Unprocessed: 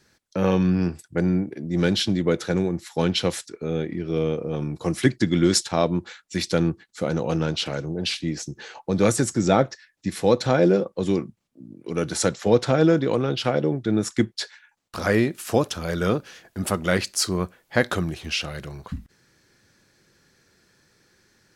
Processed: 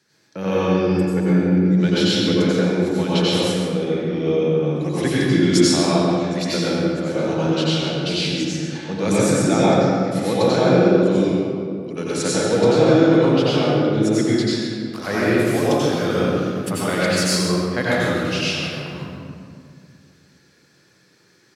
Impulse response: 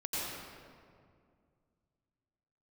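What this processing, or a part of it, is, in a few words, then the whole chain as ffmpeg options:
PA in a hall: -filter_complex "[0:a]asettb=1/sr,asplit=3[link_01][link_02][link_03];[link_01]atrim=end=0.544[link_04];[link_02]atrim=start=0.54:end=1.2,asetpts=PTS-STARTPTS,afade=type=in:duration=0.004:curve=qsin,afade=type=out:start_time=0.656:duration=0.004:curve=qsin,aecho=1:1:2.3:0.65,atrim=end_sample=29106[link_05];[link_03]atrim=start=1.196[link_06];[link_04][link_05]acrossfade=duration=0.004:curve1=hsin:curve2=qsin[link_07];[link_07][link_06]acrossfade=duration=0.004:curve1=qsin:curve2=hsin,highpass=frequency=110:width=0.5412,highpass=frequency=110:width=1.3066,equalizer=frequency=3500:width_type=o:width=1.8:gain=3,aecho=1:1:136:0.316[link_08];[1:a]atrim=start_sample=2205[link_09];[link_08][link_09]afir=irnorm=-1:irlink=0,volume=-1.5dB"

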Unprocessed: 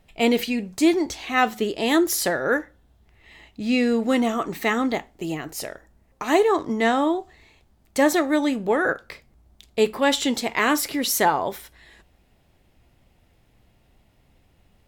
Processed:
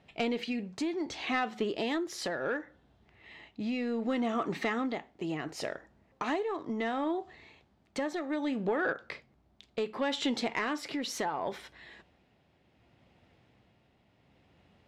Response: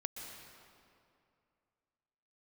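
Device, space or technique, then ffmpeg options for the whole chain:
AM radio: -af "highpass=110,lowpass=4300,acompressor=threshold=-26dB:ratio=6,asoftclip=type=tanh:threshold=-19.5dB,tremolo=f=0.68:d=0.39"

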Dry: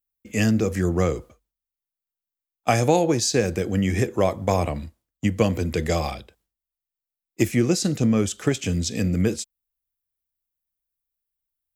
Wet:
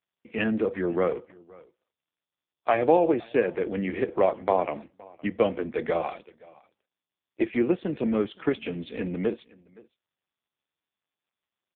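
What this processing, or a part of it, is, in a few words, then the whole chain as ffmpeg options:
satellite phone: -af "highpass=310,lowpass=3300,aecho=1:1:517:0.0631,volume=1dB" -ar 8000 -c:a libopencore_amrnb -b:a 5150

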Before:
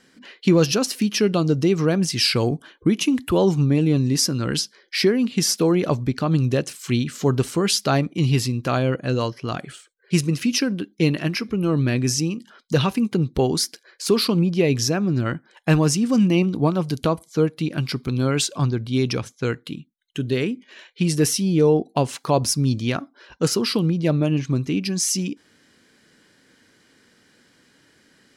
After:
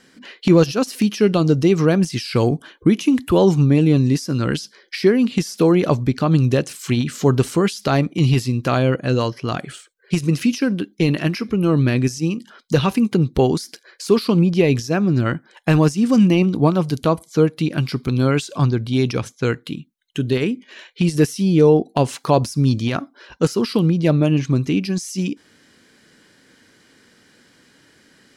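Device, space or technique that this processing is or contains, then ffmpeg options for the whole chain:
de-esser from a sidechain: -filter_complex "[0:a]asplit=2[link_01][link_02];[link_02]highpass=4000,apad=whole_len=1251055[link_03];[link_01][link_03]sidechaincompress=threshold=-32dB:ratio=16:attack=1.6:release=44,volume=4dB"

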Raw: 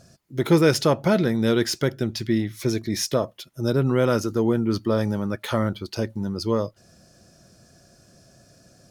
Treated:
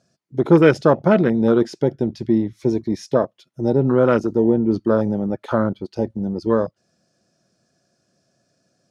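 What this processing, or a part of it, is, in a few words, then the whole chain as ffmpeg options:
over-cleaned archive recording: -af "highpass=150,lowpass=7500,afwtdn=0.0398,volume=5.5dB"

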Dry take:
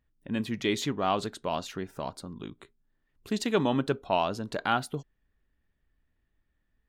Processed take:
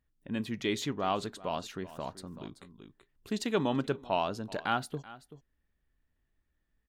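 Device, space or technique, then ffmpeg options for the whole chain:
ducked delay: -filter_complex "[0:a]asplit=3[link_01][link_02][link_03];[link_02]adelay=382,volume=-8dB[link_04];[link_03]apad=whole_len=320365[link_05];[link_04][link_05]sidechaincompress=threshold=-37dB:ratio=6:attack=6.8:release=728[link_06];[link_01][link_06]amix=inputs=2:normalize=0,volume=-3.5dB"

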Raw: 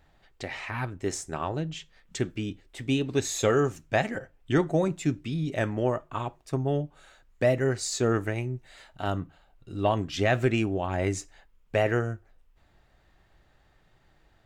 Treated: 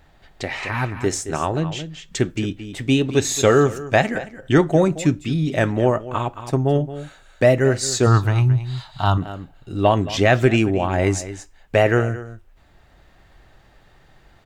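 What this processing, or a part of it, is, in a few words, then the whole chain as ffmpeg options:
ducked delay: -filter_complex "[0:a]asplit=3[link_01][link_02][link_03];[link_02]adelay=221,volume=-2dB[link_04];[link_03]apad=whole_len=647305[link_05];[link_04][link_05]sidechaincompress=threshold=-36dB:ratio=8:attack=20:release=980[link_06];[link_01][link_06]amix=inputs=2:normalize=0,asettb=1/sr,asplit=3[link_07][link_08][link_09];[link_07]atrim=end=8.064[link_10];[link_08]atrim=start=8.06:end=9.18,asetpts=PTS-STARTPTS,afade=type=in:duration=0.004:curve=qsin,afade=type=out:start_time=1.116:duration=0.004:curve=qsin,equalizer=frequency=125:width_type=o:width=1:gain=10,equalizer=frequency=250:width_type=o:width=1:gain=-5,equalizer=frequency=500:width_type=o:width=1:gain=-11,equalizer=frequency=1000:width_type=o:width=1:gain=12,equalizer=frequency=2000:width_type=o:width=1:gain=-10,equalizer=frequency=4000:width_type=o:width=1:gain=10,equalizer=frequency=8000:width_type=o:width=1:gain=-7[link_11];[link_09]atrim=start=9.176[link_12];[link_10][link_11]acrossfade=duration=0.004:curve1=hsin:curve2=qsin[link_13];[link_13][link_12]acrossfade=duration=0.004:curve1=qsin:curve2=hsin,volume=8.5dB"

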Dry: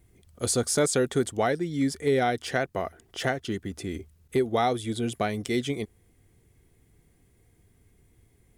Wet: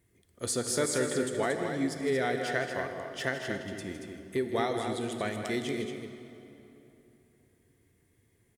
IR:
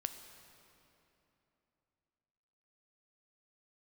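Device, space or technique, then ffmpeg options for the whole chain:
stadium PA: -filter_complex "[0:a]highpass=frequency=140:poles=1,equalizer=frequency=1800:width_type=o:width=0.21:gain=7,bandreject=frequency=760:width=12,aecho=1:1:160.3|230.3:0.282|0.447[link_01];[1:a]atrim=start_sample=2205[link_02];[link_01][link_02]afir=irnorm=-1:irlink=0,volume=-4dB"

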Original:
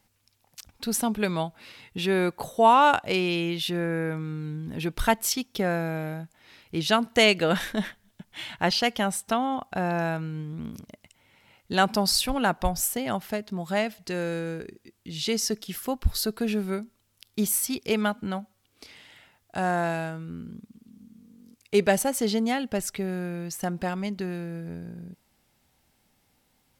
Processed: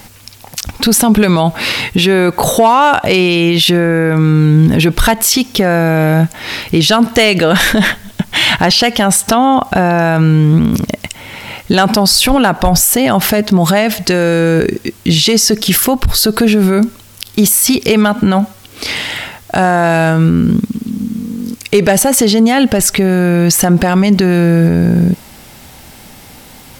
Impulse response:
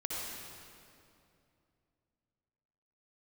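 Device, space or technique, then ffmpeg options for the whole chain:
loud club master: -af "acompressor=threshold=-28dB:ratio=2.5,asoftclip=type=hard:threshold=-20.5dB,alimiter=level_in=32.5dB:limit=-1dB:release=50:level=0:latency=1,volume=-1dB"

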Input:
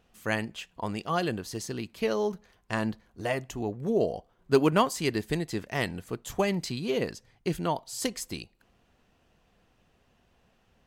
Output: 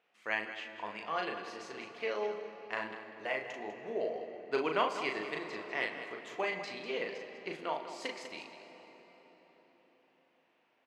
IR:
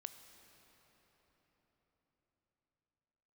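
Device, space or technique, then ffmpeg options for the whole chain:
station announcement: -filter_complex "[0:a]highpass=480,lowpass=3700,equalizer=frequency=2200:width_type=o:width=0.46:gain=7,aecho=1:1:37.9|198.3:0.631|0.282[link_01];[1:a]atrim=start_sample=2205[link_02];[link_01][link_02]afir=irnorm=-1:irlink=0,volume=-1.5dB"

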